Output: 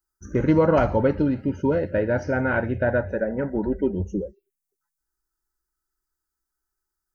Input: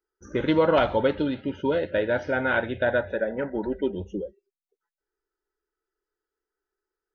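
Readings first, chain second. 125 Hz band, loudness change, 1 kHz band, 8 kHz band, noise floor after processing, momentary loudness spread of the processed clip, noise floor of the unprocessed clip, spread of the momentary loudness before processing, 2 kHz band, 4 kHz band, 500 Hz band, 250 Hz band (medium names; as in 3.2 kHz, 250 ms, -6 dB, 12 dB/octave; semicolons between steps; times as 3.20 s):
+9.0 dB, +2.5 dB, 0.0 dB, no reading, -84 dBFS, 9 LU, under -85 dBFS, 11 LU, -1.5 dB, under -10 dB, +1.5 dB, +4.5 dB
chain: tone controls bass +9 dB, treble +11 dB; touch-sensitive phaser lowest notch 460 Hz, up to 3.5 kHz, full sweep at -26 dBFS; trim +1 dB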